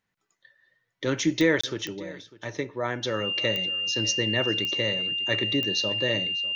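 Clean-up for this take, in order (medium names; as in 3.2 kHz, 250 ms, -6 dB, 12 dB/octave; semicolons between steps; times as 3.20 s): de-click; band-stop 2.8 kHz, Q 30; interpolate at 1.61 s, 25 ms; inverse comb 599 ms -19.5 dB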